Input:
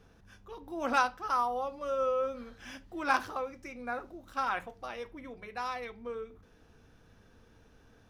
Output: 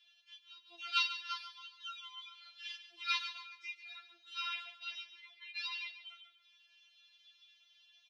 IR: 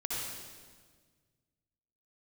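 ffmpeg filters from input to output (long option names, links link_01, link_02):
-filter_complex "[0:a]asuperpass=centerf=3400:order=4:qfactor=1.9,asplit=2[link_01][link_02];[link_02]aecho=0:1:141|282|423:0.266|0.0772|0.0224[link_03];[link_01][link_03]amix=inputs=2:normalize=0,afftfilt=real='re*4*eq(mod(b,16),0)':imag='im*4*eq(mod(b,16),0)':win_size=2048:overlap=0.75,volume=13dB"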